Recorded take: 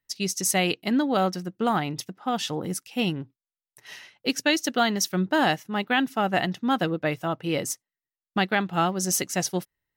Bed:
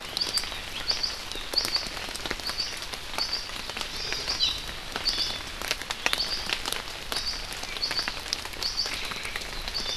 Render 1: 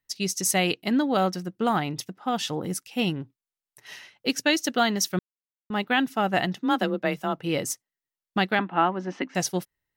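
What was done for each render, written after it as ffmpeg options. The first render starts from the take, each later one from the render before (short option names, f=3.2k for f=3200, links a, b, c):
-filter_complex "[0:a]asettb=1/sr,asplit=3[a][b][c];[a]atrim=end=6.554[d];[b]atrim=start=6.55:end=7.4,asetpts=PTS-STARTPTS,afade=t=in:d=0.004:c=qsin,afade=t=out:st=0.846:d=0.004:c=qsin,afreqshift=26[e];[c]atrim=start=7.396[f];[d][e]acrossfade=d=0.004:c1=hsin:c2=qsin[g];[g][f]acrossfade=d=0.004:c1=qsin:c2=hsin,asettb=1/sr,asplit=3[h][i][j];[h]atrim=end=8.594[k];[i]atrim=start=8.59:end=9.35,asetpts=PTS-STARTPTS,afade=t=in:d=0.004:c=qsin,afade=t=out:st=0.756:d=0.004:c=qsin,highpass=f=210:w=0.5412,highpass=f=210:w=1.3066,equalizer=f=260:t=q:w=4:g=10,equalizer=f=450:t=q:w=4:g=-4,equalizer=f=960:t=q:w=4:g=7,equalizer=f=1.7k:t=q:w=4:g=3,lowpass=f=2.8k:w=0.5412,lowpass=f=2.8k:w=1.3066[l];[j]atrim=start=9.346[m];[k][l]acrossfade=d=0.004:c1=hsin:c2=qsin[n];[n][m]acrossfade=d=0.004:c1=qsin:c2=hsin,asplit=3[o][p][q];[o]atrim=end=5.19,asetpts=PTS-STARTPTS,afade=t=out:st=5.186:d=0.004:c=hsin[r];[p]atrim=start=5.19:end=5.7,asetpts=PTS-STARTPTS,volume=0[s];[q]atrim=start=5.7,asetpts=PTS-STARTPTS,afade=t=in:d=0.004:c=hsin[t];[r][s][t]concat=n=3:v=0:a=1"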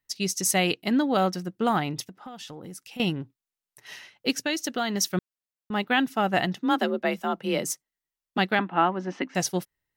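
-filter_complex "[0:a]asettb=1/sr,asplit=3[a][b][c];[a]atrim=end=2.064[d];[b]atrim=start=2.06:end=3,asetpts=PTS-STARTPTS,afade=t=in:d=0.004:c=qsin,afade=t=out:st=0.936:d=0.004:c=qsin,acompressor=threshold=-37dB:ratio=8:attack=3.2:release=140:knee=1:detection=peak[e];[c]atrim=start=2.996[f];[d][e]acrossfade=d=0.004:c1=hsin:c2=qsin[g];[g][f]acrossfade=d=0.004:c1=qsin:c2=hsin,asettb=1/sr,asplit=3[h][i][j];[h]atrim=end=4.344[k];[i]atrim=start=4.34:end=4.95,asetpts=PTS-STARTPTS,afade=t=in:d=0.004:c=qsin,afade=t=out:st=0.606:d=0.004:c=qsin,acompressor=threshold=-27dB:ratio=2:attack=3.2:release=140:knee=1:detection=peak[l];[j]atrim=start=4.946[m];[k][l]acrossfade=d=0.004:c1=hsin:c2=qsin[n];[n][m]acrossfade=d=0.004:c1=qsin:c2=hsin,asplit=3[o][p][q];[o]afade=t=out:st=6.76:d=0.02[r];[p]afreqshift=27,afade=t=in:st=6.76:d=0.02,afade=t=out:st=8.37:d=0.02[s];[q]afade=t=in:st=8.37:d=0.02[t];[r][s][t]amix=inputs=3:normalize=0"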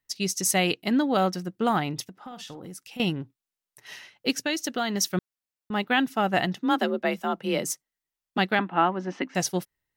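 -filter_complex "[0:a]asettb=1/sr,asplit=3[a][b][c];[a]atrim=end=2.224[d];[b]atrim=start=2.22:end=2.67,asetpts=PTS-STARTPTS,afade=t=in:d=0.004:c=qsin,afade=t=out:st=0.446:d=0.004:c=qsin,asplit=2[e][f];[f]adelay=49,volume=-11.5dB[g];[e][g]amix=inputs=2:normalize=0,atrim=end_sample=19845[h];[c]atrim=start=2.666[i];[d][h]acrossfade=d=0.004:c1=hsin:c2=qsin[j];[j][i]acrossfade=d=0.004:c1=qsin:c2=hsin"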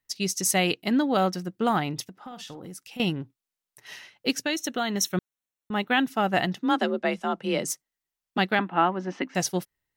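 -filter_complex "[0:a]asettb=1/sr,asplit=3[a][b][c];[a]atrim=end=4.544[d];[b]atrim=start=4.54:end=6.07,asetpts=PTS-STARTPTS,afade=t=in:d=0.004:c=qsin,afade=t=out:st=1.526:d=0.004:c=qsin,asuperstop=centerf=4800:order=12:qfactor=6[e];[c]atrim=start=6.066[f];[d][e]acrossfade=d=0.004:c1=hsin:c2=qsin[g];[g][f]acrossfade=d=0.004:c1=qsin:c2=hsin,asettb=1/sr,asplit=3[h][i][j];[h]atrim=end=6.714[k];[i]atrim=start=6.71:end=7.68,asetpts=PTS-STARTPTS,afade=t=in:d=0.004:c=qsin,afade=t=out:st=0.966:d=0.004:c=qsin,lowpass=f=9.9k:w=0.5412,lowpass=f=9.9k:w=1.3066[l];[j]atrim=start=7.676[m];[k][l]acrossfade=d=0.004:c1=hsin:c2=qsin[n];[n][m]acrossfade=d=0.004:c1=qsin:c2=hsin"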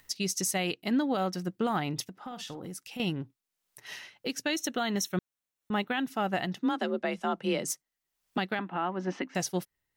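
-af "alimiter=limit=-20dB:level=0:latency=1:release=242,acompressor=mode=upward:threshold=-47dB:ratio=2.5"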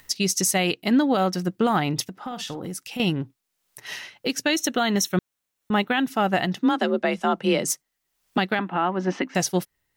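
-af "volume=8dB"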